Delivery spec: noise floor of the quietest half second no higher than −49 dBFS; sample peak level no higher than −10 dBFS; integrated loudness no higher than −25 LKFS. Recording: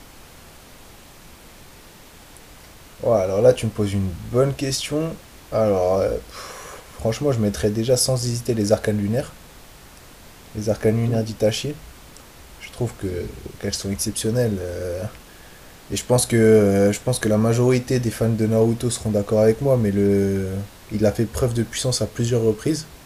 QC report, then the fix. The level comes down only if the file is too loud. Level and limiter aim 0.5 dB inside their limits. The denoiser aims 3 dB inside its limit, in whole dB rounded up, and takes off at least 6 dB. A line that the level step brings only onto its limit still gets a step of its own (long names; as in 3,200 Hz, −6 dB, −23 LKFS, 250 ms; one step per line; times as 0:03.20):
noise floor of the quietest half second −45 dBFS: out of spec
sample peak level −2.0 dBFS: out of spec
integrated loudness −21.0 LKFS: out of spec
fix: level −4.5 dB
brickwall limiter −10.5 dBFS